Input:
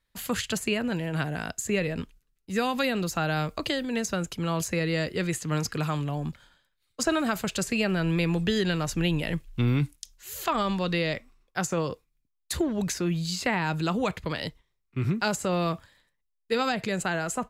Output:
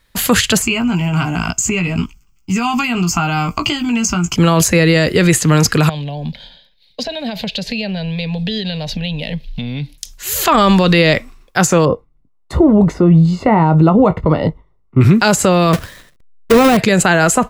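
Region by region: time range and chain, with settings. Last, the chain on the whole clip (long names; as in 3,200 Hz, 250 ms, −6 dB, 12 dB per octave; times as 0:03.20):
0:00.62–0:04.36: double-tracking delay 17 ms −5.5 dB + downward compressor 3 to 1, threshold −30 dBFS + phaser with its sweep stopped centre 2,600 Hz, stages 8
0:05.89–0:09.98: high shelf with overshoot 5,700 Hz −12.5 dB, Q 3 + downward compressor 4 to 1, threshold −38 dBFS + phaser with its sweep stopped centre 340 Hz, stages 6
0:11.85–0:15.01: Savitzky-Golay smoothing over 65 samples + double-tracking delay 19 ms −11 dB
0:15.73–0:16.77: each half-wave held at its own peak + notch filter 860 Hz, Q 5.7
whole clip: de-essing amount 50%; boost into a limiter +20.5 dB; level −1 dB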